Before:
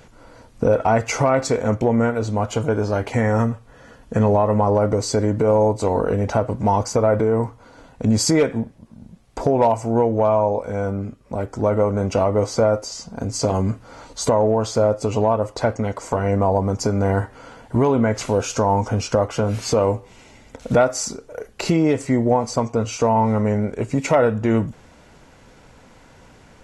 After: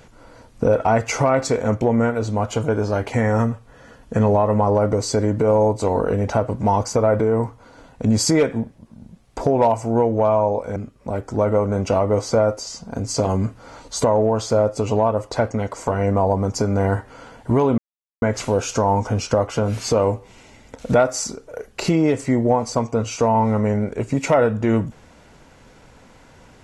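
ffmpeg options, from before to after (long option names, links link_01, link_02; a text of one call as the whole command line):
ffmpeg -i in.wav -filter_complex "[0:a]asplit=3[link_01][link_02][link_03];[link_01]atrim=end=10.762[link_04];[link_02]atrim=start=11.008:end=18.03,asetpts=PTS-STARTPTS,afade=type=out:start_time=7.018:duration=0.004:curve=hsin,apad=pad_dur=0.44[link_05];[link_03]atrim=start=18.03,asetpts=PTS-STARTPTS,afade=type=in:duration=0.004:curve=hsin[link_06];[link_05][link_06]concat=n=2:v=0:a=1[link_07];[link_04][link_07]acrossfade=duration=0.004:curve1=hsin:curve2=hsin" out.wav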